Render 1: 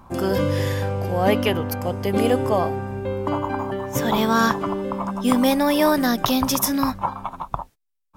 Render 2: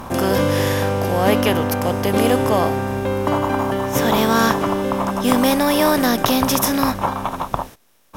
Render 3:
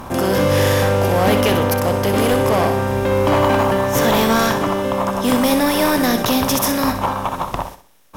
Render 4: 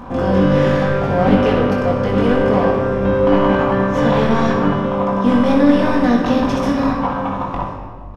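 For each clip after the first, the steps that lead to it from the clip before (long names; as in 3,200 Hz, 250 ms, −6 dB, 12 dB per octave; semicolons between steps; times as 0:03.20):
compressor on every frequency bin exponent 0.6
automatic gain control; gain into a clipping stage and back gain 11.5 dB; flutter between parallel walls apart 10.8 metres, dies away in 0.41 s
head-to-tape spacing loss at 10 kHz 28 dB; double-tracking delay 21 ms −5 dB; convolution reverb RT60 1.7 s, pre-delay 4 ms, DRR 0.5 dB; level −1.5 dB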